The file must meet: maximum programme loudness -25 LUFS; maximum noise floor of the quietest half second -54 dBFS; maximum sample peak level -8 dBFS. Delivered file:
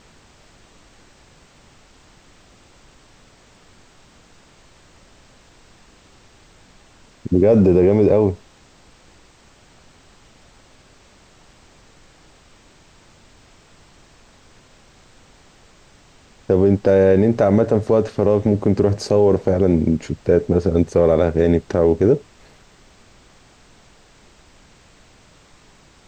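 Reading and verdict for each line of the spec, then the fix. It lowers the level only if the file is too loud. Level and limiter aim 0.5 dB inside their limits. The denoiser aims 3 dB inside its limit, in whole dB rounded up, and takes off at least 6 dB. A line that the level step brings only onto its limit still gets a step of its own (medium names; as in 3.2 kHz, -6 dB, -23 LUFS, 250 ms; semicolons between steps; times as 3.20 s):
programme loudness -16.5 LUFS: fail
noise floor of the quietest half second -51 dBFS: fail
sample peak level -5.0 dBFS: fail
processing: trim -9 dB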